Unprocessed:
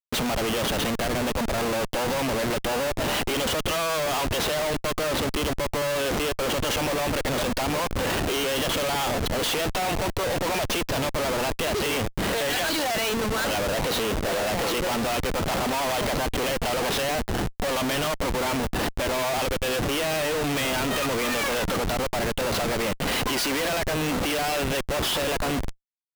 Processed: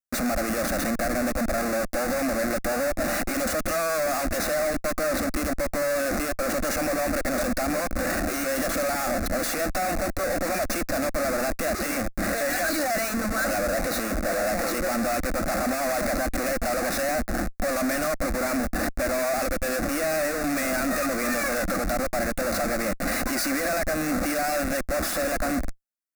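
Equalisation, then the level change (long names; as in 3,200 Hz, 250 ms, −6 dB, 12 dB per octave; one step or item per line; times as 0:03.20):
phaser with its sweep stopped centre 630 Hz, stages 8
+2.5 dB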